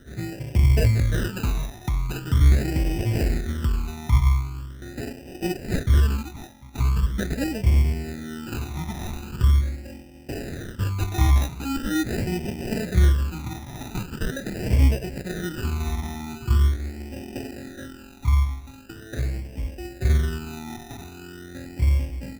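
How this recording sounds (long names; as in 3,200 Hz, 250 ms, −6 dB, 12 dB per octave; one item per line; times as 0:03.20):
aliases and images of a low sample rate 1,100 Hz, jitter 0%
phaser sweep stages 12, 0.42 Hz, lowest notch 490–1,300 Hz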